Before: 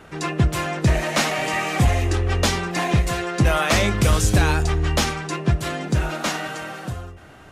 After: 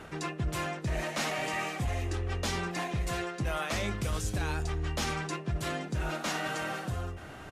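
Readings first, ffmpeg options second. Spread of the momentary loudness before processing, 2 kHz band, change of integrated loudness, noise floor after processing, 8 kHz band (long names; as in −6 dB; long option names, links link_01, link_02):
10 LU, −10.5 dB, −12.0 dB, −45 dBFS, −12.0 dB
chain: -af "aresample=32000,aresample=44100,areverse,acompressor=threshold=-31dB:ratio=5,areverse"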